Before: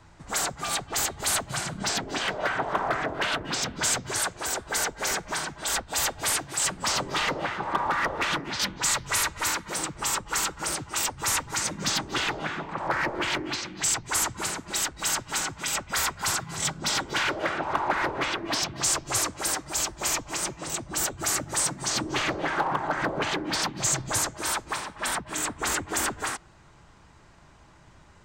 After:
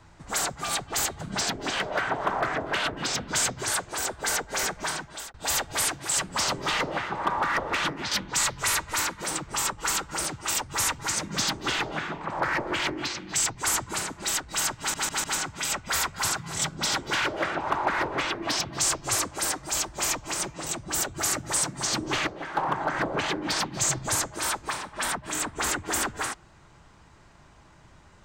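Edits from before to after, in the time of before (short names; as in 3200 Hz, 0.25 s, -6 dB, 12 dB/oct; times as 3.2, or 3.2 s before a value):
1.21–1.69 cut
5.44–5.82 fade out
15.27 stutter 0.15 s, 4 plays
22.3–22.6 gain -8 dB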